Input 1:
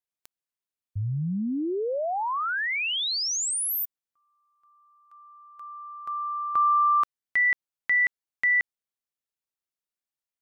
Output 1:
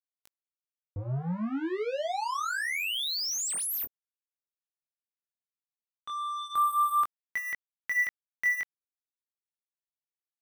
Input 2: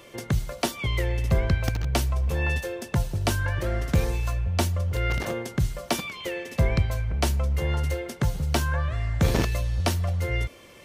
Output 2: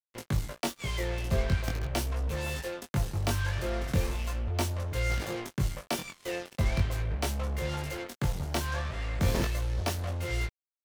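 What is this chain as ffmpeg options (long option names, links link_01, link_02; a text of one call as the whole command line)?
ffmpeg -i in.wav -af "acrusher=bits=4:mix=0:aa=0.5,flanger=delay=19:depth=3.8:speed=0.4,volume=-2.5dB" out.wav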